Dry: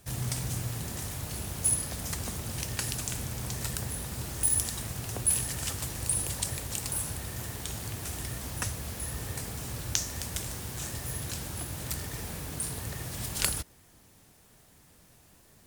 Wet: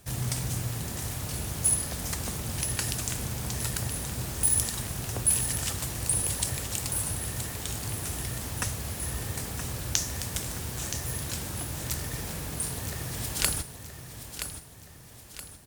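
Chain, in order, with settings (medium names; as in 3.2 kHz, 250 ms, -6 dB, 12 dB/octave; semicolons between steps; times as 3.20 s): feedback delay 973 ms, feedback 45%, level -9.5 dB; trim +2 dB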